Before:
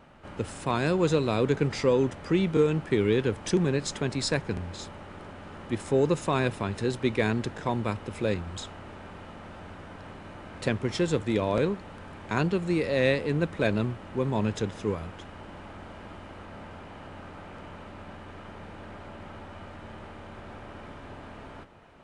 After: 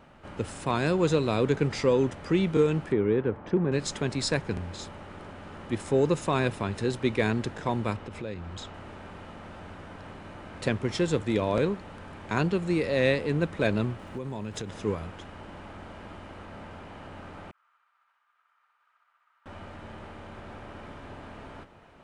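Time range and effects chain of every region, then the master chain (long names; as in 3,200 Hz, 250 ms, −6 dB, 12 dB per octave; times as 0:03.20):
0:02.92–0:03.72: low-pass filter 1,400 Hz + low-shelf EQ 80 Hz −8.5 dB
0:07.96–0:08.74: high-frequency loss of the air 59 metres + downward compressor 2.5 to 1, threshold −35 dBFS
0:13.98–0:14.69: high-shelf EQ 7,900 Hz +8 dB + surface crackle 110 per second −51 dBFS + downward compressor 12 to 1, threshold −30 dBFS
0:17.51–0:19.46: downward expander −32 dBFS + four-pole ladder high-pass 1,100 Hz, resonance 60% + flutter between parallel walls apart 10.8 metres, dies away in 0.97 s
whole clip: no processing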